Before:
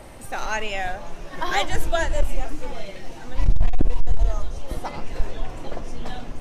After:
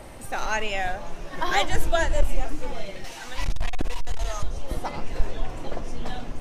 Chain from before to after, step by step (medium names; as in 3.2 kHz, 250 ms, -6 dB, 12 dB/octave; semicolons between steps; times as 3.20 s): 3.04–4.43 s: tilt shelf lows -9 dB, about 730 Hz